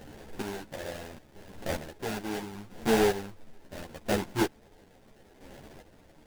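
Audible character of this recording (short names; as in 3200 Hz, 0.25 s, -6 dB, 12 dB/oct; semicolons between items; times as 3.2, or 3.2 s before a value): a quantiser's noise floor 8-bit, dither triangular; chopped level 0.74 Hz, depth 65%, duty 30%; aliases and images of a low sample rate 1200 Hz, jitter 20%; a shimmering, thickened sound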